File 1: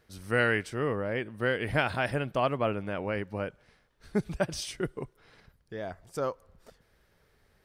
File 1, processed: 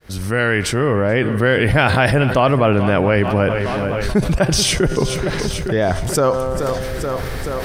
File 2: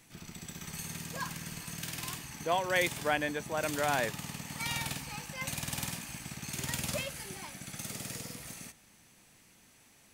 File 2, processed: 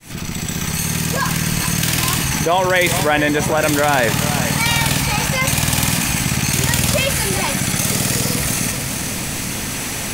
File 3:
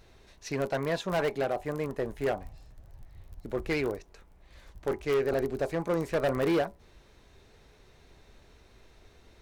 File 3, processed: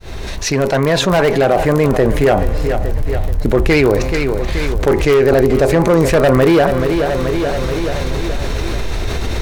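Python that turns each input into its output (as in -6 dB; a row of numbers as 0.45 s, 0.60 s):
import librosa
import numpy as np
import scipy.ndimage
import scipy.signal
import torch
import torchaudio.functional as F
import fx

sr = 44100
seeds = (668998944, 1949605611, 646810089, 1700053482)

y = fx.fade_in_head(x, sr, length_s=2.01)
y = fx.low_shelf(y, sr, hz=120.0, db=6.0)
y = fx.comb_fb(y, sr, f0_hz=130.0, decay_s=1.5, harmonics='all', damping=0.0, mix_pct=40)
y = fx.echo_feedback(y, sr, ms=430, feedback_pct=54, wet_db=-17.5)
y = fx.env_flatten(y, sr, amount_pct=70)
y = y * 10.0 ** (-1.5 / 20.0) / np.max(np.abs(y))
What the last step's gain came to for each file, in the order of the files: +14.0 dB, +16.0 dB, +18.5 dB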